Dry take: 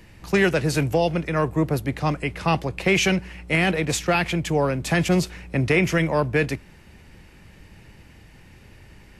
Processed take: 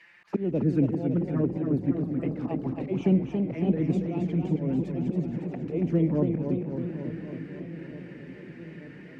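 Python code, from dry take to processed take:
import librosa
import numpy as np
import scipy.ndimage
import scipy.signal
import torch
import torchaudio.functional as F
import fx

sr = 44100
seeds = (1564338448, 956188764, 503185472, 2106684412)

p1 = fx.env_flanger(x, sr, rest_ms=6.4, full_db=-16.0)
p2 = fx.auto_swell(p1, sr, attack_ms=217.0)
p3 = fx.auto_wah(p2, sr, base_hz=250.0, top_hz=2200.0, q=2.4, full_db=-27.5, direction='down')
p4 = p3 + fx.echo_wet_lowpass(p3, sr, ms=884, feedback_pct=74, hz=780.0, wet_db=-16.0, dry=0)
p5 = fx.echo_warbled(p4, sr, ms=276, feedback_pct=69, rate_hz=2.8, cents=118, wet_db=-6)
y = p5 * librosa.db_to_amplitude(6.5)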